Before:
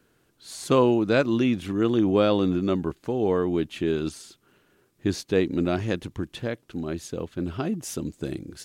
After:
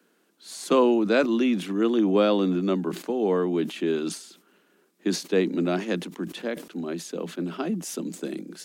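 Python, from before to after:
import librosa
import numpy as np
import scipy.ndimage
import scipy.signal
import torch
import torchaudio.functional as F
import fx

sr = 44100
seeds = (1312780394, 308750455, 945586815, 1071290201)

y = scipy.signal.sosfilt(scipy.signal.butter(16, 170.0, 'highpass', fs=sr, output='sos'), x)
y = fx.sustainer(y, sr, db_per_s=130.0)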